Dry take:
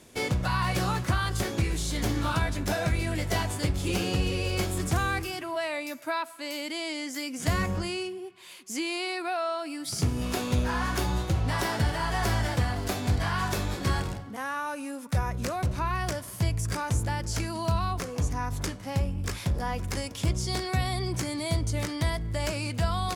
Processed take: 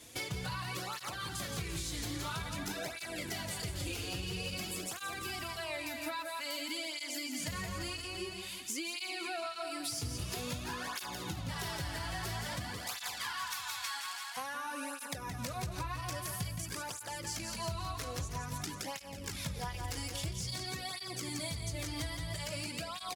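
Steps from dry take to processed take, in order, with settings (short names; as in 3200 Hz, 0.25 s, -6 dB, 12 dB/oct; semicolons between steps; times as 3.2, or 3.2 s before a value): 12.75–14.37 steep high-pass 830 Hz 48 dB/oct; feedback echo 0.169 s, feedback 55%, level -6.5 dB; in parallel at +0.5 dB: limiter -19.5 dBFS, peak gain reduction 7 dB; on the sum: bell 3500 Hz +6 dB 2 oct; added harmonics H 8 -33 dB, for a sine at -7 dBFS; high shelf 7700 Hz +10.5 dB; compressor 10:1, threshold -25 dBFS, peak gain reduction 11 dB; tape flanging out of phase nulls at 0.5 Hz, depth 5.5 ms; gain -7.5 dB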